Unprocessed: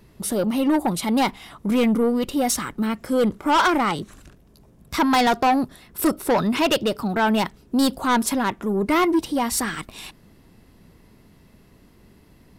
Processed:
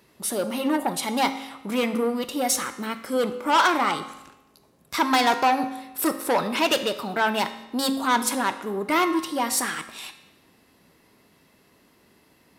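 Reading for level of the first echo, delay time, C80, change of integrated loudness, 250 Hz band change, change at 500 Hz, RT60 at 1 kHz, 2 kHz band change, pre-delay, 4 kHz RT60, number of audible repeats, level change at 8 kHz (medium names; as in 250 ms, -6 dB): no echo, no echo, 13.0 dB, -2.5 dB, -6.0 dB, -3.0 dB, 0.95 s, 0.0 dB, 4 ms, 0.85 s, no echo, +0.5 dB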